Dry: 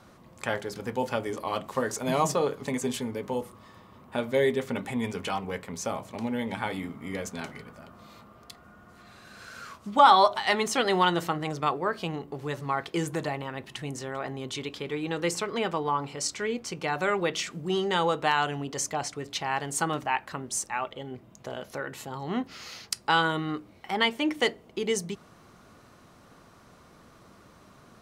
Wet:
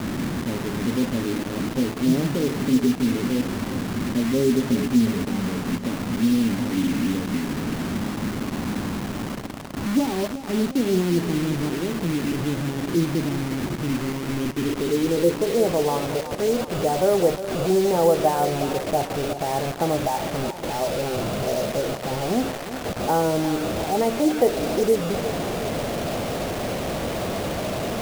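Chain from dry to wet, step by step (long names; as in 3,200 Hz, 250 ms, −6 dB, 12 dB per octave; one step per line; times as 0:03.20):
linear delta modulator 64 kbit/s, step −27.5 dBFS
dynamic equaliser 1,100 Hz, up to −6 dB, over −40 dBFS, Q 1.4
low-pass filter sweep 280 Hz → 650 Hz, 0:14.36–0:15.87
bit-depth reduction 6 bits, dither none
feedback echo with a swinging delay time 361 ms, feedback 57%, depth 79 cents, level −12 dB
level +5.5 dB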